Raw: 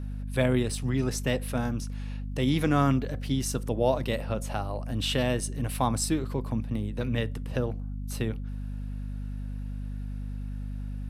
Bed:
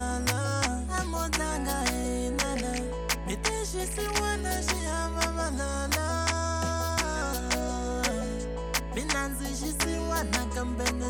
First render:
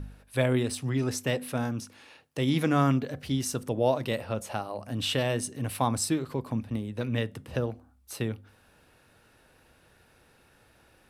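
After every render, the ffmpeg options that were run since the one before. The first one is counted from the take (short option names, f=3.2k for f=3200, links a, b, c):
-af "bandreject=f=50:t=h:w=4,bandreject=f=100:t=h:w=4,bandreject=f=150:t=h:w=4,bandreject=f=200:t=h:w=4,bandreject=f=250:t=h:w=4"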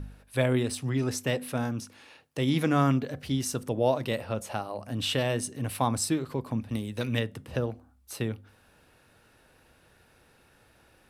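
-filter_complex "[0:a]asplit=3[a][b][c];[a]afade=t=out:st=6.69:d=0.02[d];[b]highshelf=f=2.6k:g=10.5,afade=t=in:st=6.69:d=0.02,afade=t=out:st=7.18:d=0.02[e];[c]afade=t=in:st=7.18:d=0.02[f];[d][e][f]amix=inputs=3:normalize=0"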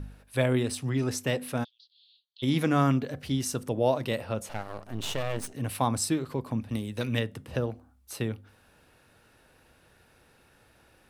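-filter_complex "[0:a]asplit=3[a][b][c];[a]afade=t=out:st=1.63:d=0.02[d];[b]asuperpass=centerf=3800:order=8:qfactor=2.7,afade=t=in:st=1.63:d=0.02,afade=t=out:st=2.42:d=0.02[e];[c]afade=t=in:st=2.42:d=0.02[f];[d][e][f]amix=inputs=3:normalize=0,asettb=1/sr,asplit=3[g][h][i];[g]atrim=end=4.494[j];[h]atrim=start=4.49:end=5.54,asetpts=PTS-STARTPTS,afade=t=in:d=0.004:c=qsin,afade=t=out:st=1.046:d=0.004:c=qsin,aeval=exprs='max(val(0),0)':c=same[k];[i]atrim=start=5.536[l];[j][k]acrossfade=d=0.004:c1=hsin:c2=qsin[m];[m][l]acrossfade=d=0.004:c1=qsin:c2=hsin"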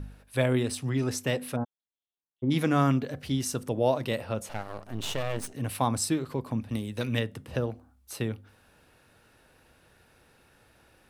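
-filter_complex "[0:a]asplit=3[a][b][c];[a]afade=t=out:st=1.55:d=0.02[d];[b]lowpass=f=1.1k:w=0.5412,lowpass=f=1.1k:w=1.3066,afade=t=in:st=1.55:d=0.02,afade=t=out:st=2.5:d=0.02[e];[c]afade=t=in:st=2.5:d=0.02[f];[d][e][f]amix=inputs=3:normalize=0"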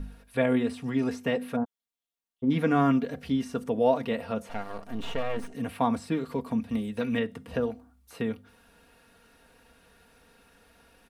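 -filter_complex "[0:a]acrossover=split=2800[a][b];[b]acompressor=threshold=-54dB:ratio=4:attack=1:release=60[c];[a][c]amix=inputs=2:normalize=0,aecho=1:1:4.3:0.67"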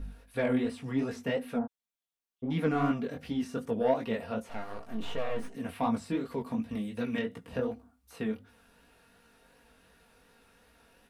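-af "asoftclip=type=tanh:threshold=-15.5dB,flanger=delay=17:depth=6.2:speed=2.7"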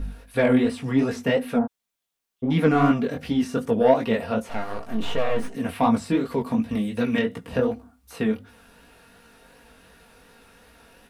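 -af "volume=9.5dB"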